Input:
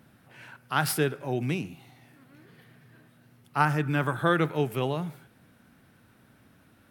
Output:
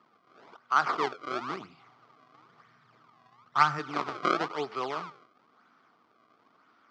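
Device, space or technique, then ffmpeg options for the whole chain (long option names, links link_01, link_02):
circuit-bent sampling toy: -filter_complex "[0:a]asplit=3[link_01][link_02][link_03];[link_01]afade=type=out:start_time=1.6:duration=0.02[link_04];[link_02]asubboost=boost=8.5:cutoff=130,afade=type=in:start_time=1.6:duration=0.02,afade=type=out:start_time=3.78:duration=0.02[link_05];[link_03]afade=type=in:start_time=3.78:duration=0.02[link_06];[link_04][link_05][link_06]amix=inputs=3:normalize=0,acrusher=samples=28:mix=1:aa=0.000001:lfo=1:lforange=44.8:lforate=1,highpass=520,equalizer=frequency=550:width_type=q:width=4:gain=-8,equalizer=frequency=820:width_type=q:width=4:gain=-3,equalizer=frequency=1200:width_type=q:width=4:gain=10,equalizer=frequency=1700:width_type=q:width=4:gain=-7,equalizer=frequency=2700:width_type=q:width=4:gain=-8,equalizer=frequency=3800:width_type=q:width=4:gain=-6,lowpass=frequency=4300:width=0.5412,lowpass=frequency=4300:width=1.3066,volume=1.5dB"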